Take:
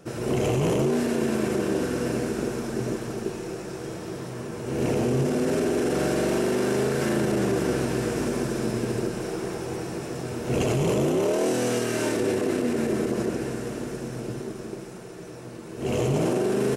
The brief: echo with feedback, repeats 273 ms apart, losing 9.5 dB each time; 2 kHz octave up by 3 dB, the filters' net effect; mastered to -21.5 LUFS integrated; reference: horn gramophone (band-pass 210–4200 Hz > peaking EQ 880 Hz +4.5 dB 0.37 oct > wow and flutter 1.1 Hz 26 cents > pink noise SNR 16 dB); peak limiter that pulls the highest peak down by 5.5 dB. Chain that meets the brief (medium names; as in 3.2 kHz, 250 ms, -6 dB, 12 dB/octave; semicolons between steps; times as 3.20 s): peaking EQ 2 kHz +4 dB; peak limiter -19 dBFS; band-pass 210–4200 Hz; peaking EQ 880 Hz +4.5 dB 0.37 oct; feedback delay 273 ms, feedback 33%, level -9.5 dB; wow and flutter 1.1 Hz 26 cents; pink noise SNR 16 dB; trim +8 dB